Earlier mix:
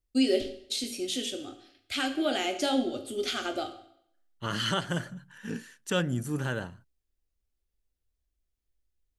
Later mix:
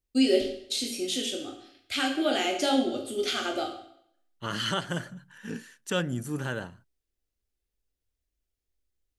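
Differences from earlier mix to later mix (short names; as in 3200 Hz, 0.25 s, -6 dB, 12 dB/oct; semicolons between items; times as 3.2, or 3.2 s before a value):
first voice: send +6.0 dB; master: add low shelf 81 Hz -7.5 dB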